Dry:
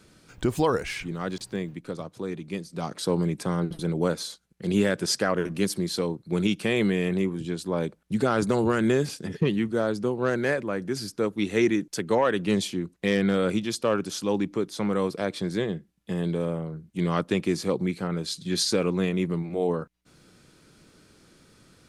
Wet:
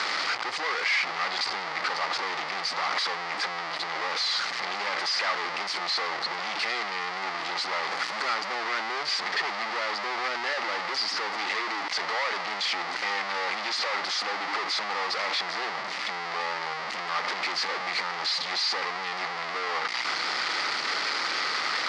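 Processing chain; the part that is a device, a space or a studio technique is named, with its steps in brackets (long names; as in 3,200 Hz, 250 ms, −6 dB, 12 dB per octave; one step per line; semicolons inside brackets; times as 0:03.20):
home computer beeper (sign of each sample alone; loudspeaker in its box 710–5,100 Hz, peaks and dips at 820 Hz +6 dB, 1,200 Hz +8 dB, 2,000 Hz +10 dB, 4,700 Hz +8 dB)
0:07.87–0:08.35: high-shelf EQ 8,500 Hz +8 dB
level −1.5 dB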